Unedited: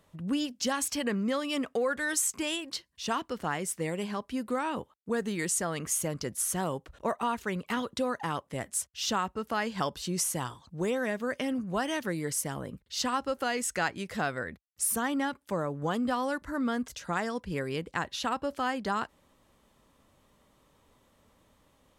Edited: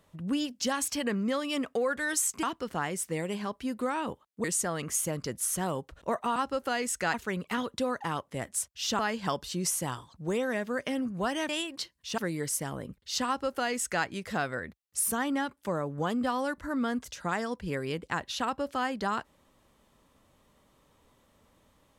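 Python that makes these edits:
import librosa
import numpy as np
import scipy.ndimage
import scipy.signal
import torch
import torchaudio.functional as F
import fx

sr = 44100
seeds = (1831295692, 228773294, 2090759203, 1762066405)

y = fx.edit(x, sr, fx.move(start_s=2.43, length_s=0.69, to_s=12.02),
    fx.cut(start_s=5.13, length_s=0.28),
    fx.cut(start_s=9.18, length_s=0.34),
    fx.duplicate(start_s=13.11, length_s=0.78, to_s=7.33), tone=tone)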